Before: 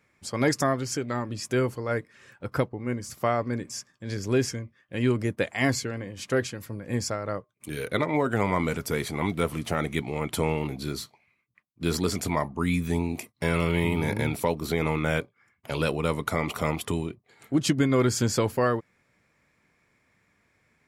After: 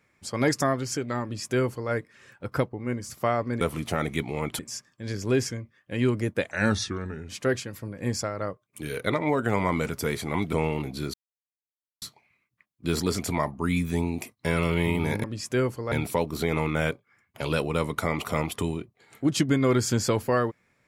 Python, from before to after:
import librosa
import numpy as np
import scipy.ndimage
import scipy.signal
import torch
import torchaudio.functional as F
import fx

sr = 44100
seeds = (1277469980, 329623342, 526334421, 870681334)

y = fx.edit(x, sr, fx.duplicate(start_s=1.23, length_s=0.68, to_s=14.21),
    fx.speed_span(start_s=5.53, length_s=0.63, speed=0.81),
    fx.move(start_s=9.4, length_s=0.98, to_s=3.61),
    fx.insert_silence(at_s=10.99, length_s=0.88), tone=tone)